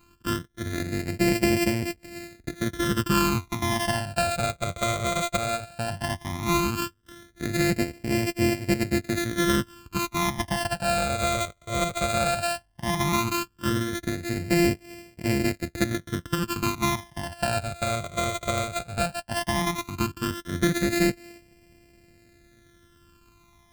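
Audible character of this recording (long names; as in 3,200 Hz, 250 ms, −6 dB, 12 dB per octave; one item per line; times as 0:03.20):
a buzz of ramps at a fixed pitch in blocks of 128 samples
phaser sweep stages 12, 0.15 Hz, lowest notch 290–1,200 Hz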